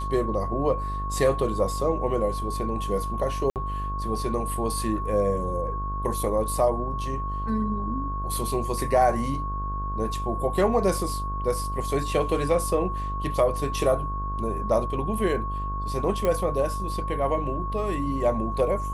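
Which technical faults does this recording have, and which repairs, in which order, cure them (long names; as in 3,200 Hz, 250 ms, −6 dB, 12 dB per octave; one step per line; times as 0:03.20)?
mains buzz 50 Hz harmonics 33 −31 dBFS
whistle 1,100 Hz −31 dBFS
0:03.50–0:03.56: drop-out 58 ms
0:16.25: click −13 dBFS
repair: click removal
notch filter 1,100 Hz, Q 30
hum removal 50 Hz, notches 33
repair the gap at 0:03.50, 58 ms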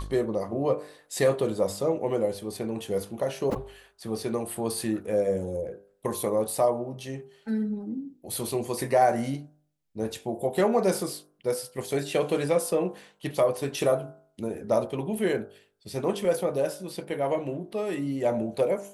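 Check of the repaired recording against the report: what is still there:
0:16.25: click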